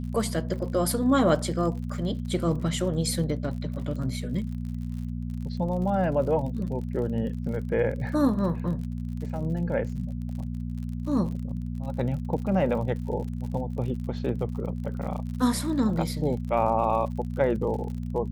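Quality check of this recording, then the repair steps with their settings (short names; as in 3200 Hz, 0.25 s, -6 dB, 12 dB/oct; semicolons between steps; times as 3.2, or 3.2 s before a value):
crackle 52/s -36 dBFS
hum 60 Hz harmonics 4 -32 dBFS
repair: de-click; de-hum 60 Hz, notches 4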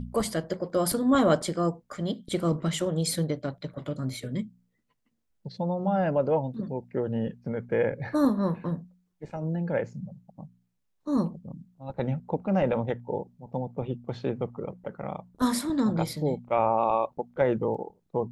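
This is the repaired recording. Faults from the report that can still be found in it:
none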